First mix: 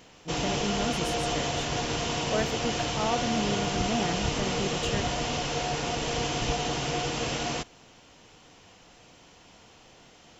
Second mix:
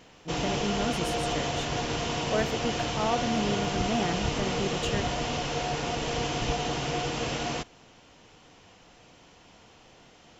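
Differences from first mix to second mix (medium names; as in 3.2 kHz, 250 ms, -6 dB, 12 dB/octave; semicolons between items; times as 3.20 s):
background: add treble shelf 5.3 kHz -5.5 dB; reverb: on, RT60 0.95 s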